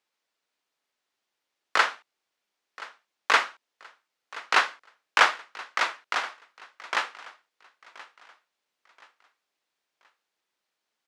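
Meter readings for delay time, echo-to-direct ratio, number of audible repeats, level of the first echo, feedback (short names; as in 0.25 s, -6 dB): 1.027 s, -18.5 dB, 2, -19.0 dB, 36%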